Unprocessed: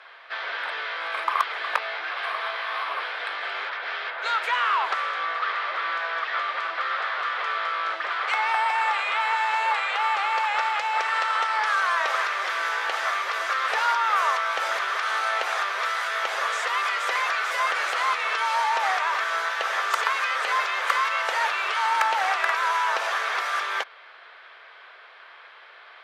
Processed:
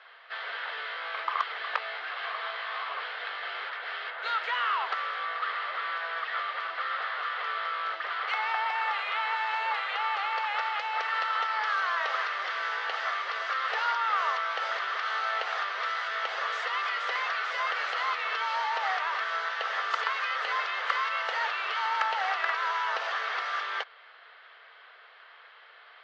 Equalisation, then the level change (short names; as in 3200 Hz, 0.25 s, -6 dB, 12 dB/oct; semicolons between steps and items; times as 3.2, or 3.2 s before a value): speaker cabinet 320–5600 Hz, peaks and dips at 460 Hz +5 dB, 730 Hz +3 dB, 1300 Hz +4 dB, 1900 Hz +4 dB, 3000 Hz +5 dB, 4400 Hz +4 dB; notch 2400 Hz, Q 27; -8.5 dB